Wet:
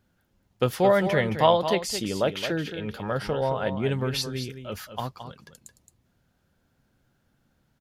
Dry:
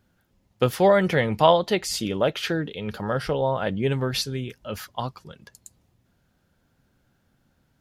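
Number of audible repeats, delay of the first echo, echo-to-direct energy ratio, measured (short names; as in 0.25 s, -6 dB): 1, 0.219 s, -9.5 dB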